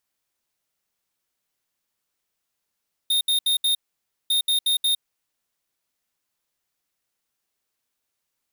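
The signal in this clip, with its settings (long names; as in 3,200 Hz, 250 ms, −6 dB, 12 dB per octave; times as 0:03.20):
beeps in groups square 3,680 Hz, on 0.11 s, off 0.07 s, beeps 4, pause 0.55 s, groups 2, −20.5 dBFS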